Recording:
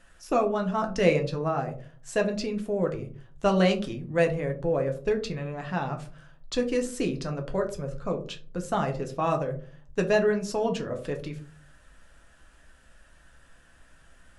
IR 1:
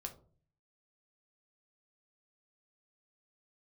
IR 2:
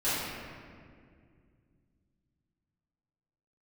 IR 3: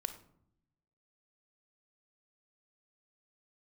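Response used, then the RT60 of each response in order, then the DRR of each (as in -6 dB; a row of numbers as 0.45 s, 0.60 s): 1; 0.45 s, 2.1 s, no single decay rate; 3.5 dB, -14.5 dB, 9.0 dB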